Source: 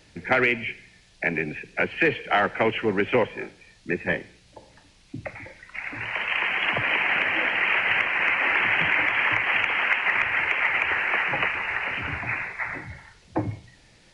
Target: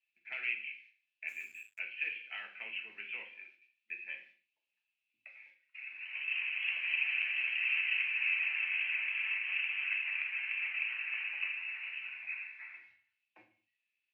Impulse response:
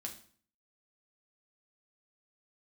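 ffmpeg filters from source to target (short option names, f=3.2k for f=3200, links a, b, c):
-filter_complex "[0:a]bandpass=f=2.6k:t=q:w=12:csg=0,agate=range=-14dB:threshold=-58dB:ratio=16:detection=peak[a];[1:a]atrim=start_sample=2205,afade=t=out:st=0.34:d=0.01,atrim=end_sample=15435[b];[a][b]afir=irnorm=-1:irlink=0,asplit=3[c][d][e];[c]afade=t=out:st=1.27:d=0.02[f];[d]aeval=exprs='sgn(val(0))*max(abs(val(0))-0.0015,0)':c=same,afade=t=in:st=1.27:d=0.02,afade=t=out:st=1.78:d=0.02[g];[e]afade=t=in:st=1.78:d=0.02[h];[f][g][h]amix=inputs=3:normalize=0,asettb=1/sr,asplit=3[i][j][k];[i]atrim=end=6.664[l];[j]atrim=start=6.66:end=8.47,asetpts=PTS-STARTPTS,afade=t=in:d=0.004:c=qsin,afade=t=out:st=1.806:d=0.004:c=qsin,aemphasis=mode=production:type=50kf[m];[k]atrim=start=8.466[n];[l][m]acrossfade=d=0.004:c1=hsin:c2=qsin[o];[o][n]acrossfade=d=0.004:c1=qsin:c2=hsin"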